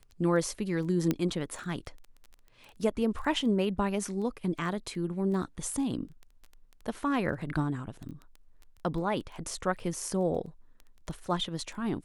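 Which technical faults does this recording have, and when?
crackle 10 per s -38 dBFS
1.11 s: pop -14 dBFS

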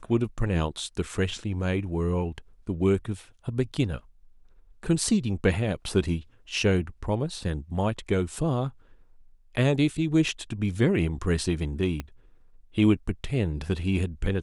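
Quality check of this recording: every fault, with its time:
12.00 s: pop -18 dBFS

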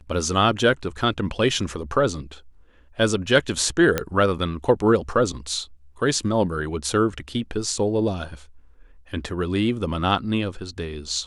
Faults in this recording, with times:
3.98 s: pop -7 dBFS

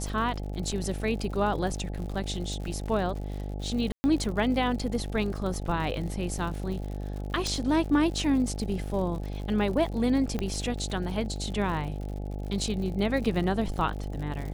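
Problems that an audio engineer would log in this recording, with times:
buzz 50 Hz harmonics 17 -34 dBFS
crackle 88 per s -36 dBFS
0.72 s: dropout 4.4 ms
3.92–4.04 s: dropout 120 ms
7.47 s: pop -17 dBFS
10.39 s: pop -17 dBFS

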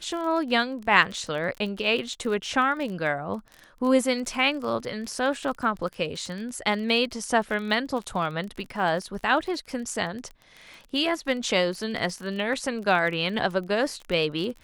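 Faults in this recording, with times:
crackle 28 per s -32 dBFS

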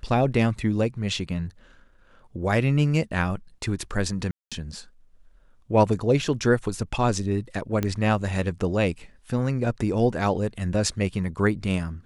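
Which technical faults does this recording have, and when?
4.31–4.52 s: dropout 206 ms
7.83 s: pop -12 dBFS

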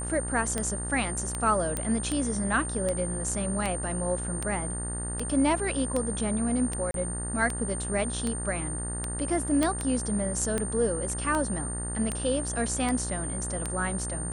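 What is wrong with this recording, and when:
buzz 60 Hz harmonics 32 -35 dBFS
tick 78 rpm -15 dBFS
whine 9 kHz -34 dBFS
1.77 s: pop -15 dBFS
6.91–6.94 s: dropout 32 ms
9.63 s: pop -12 dBFS

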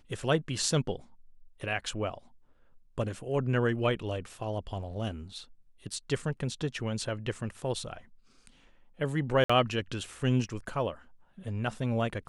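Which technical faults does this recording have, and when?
9.44–9.49 s: dropout 55 ms

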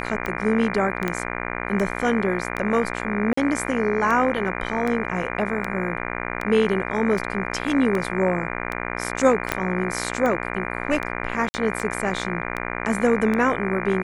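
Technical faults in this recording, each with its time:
buzz 60 Hz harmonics 40 -29 dBFS
tick 78 rpm -14 dBFS
1.08 s: pop -11 dBFS
3.33–3.37 s: dropout 44 ms
9.52 s: pop -6 dBFS
11.49–11.54 s: dropout 50 ms

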